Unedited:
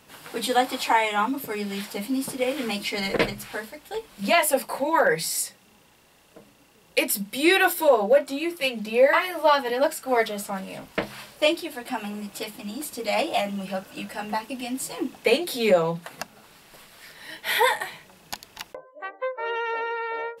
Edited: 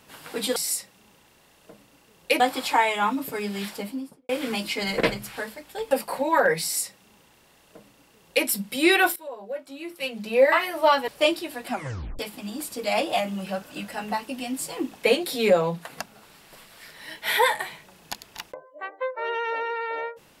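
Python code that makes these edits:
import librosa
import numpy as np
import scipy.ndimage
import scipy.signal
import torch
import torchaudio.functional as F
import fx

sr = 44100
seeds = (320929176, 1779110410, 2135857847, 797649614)

y = fx.studio_fade_out(x, sr, start_s=1.83, length_s=0.62)
y = fx.edit(y, sr, fx.cut(start_s=4.07, length_s=0.45),
    fx.duplicate(start_s=5.23, length_s=1.84, to_s=0.56),
    fx.fade_in_from(start_s=7.77, length_s=1.25, curve='qua', floor_db=-20.0),
    fx.cut(start_s=9.69, length_s=1.6),
    fx.tape_stop(start_s=11.91, length_s=0.49), tone=tone)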